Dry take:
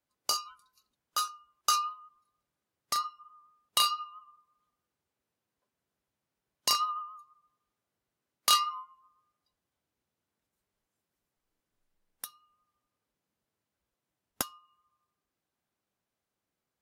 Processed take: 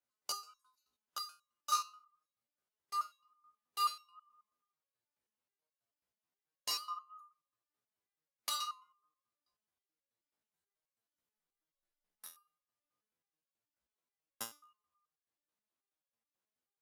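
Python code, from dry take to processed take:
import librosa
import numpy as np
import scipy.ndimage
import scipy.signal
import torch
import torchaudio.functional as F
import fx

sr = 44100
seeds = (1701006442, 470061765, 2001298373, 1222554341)

y = fx.low_shelf(x, sr, hz=280.0, db=-7.5)
y = fx.resonator_held(y, sr, hz=9.3, low_hz=61.0, high_hz=550.0)
y = F.gain(torch.from_numpy(y), 1.5).numpy()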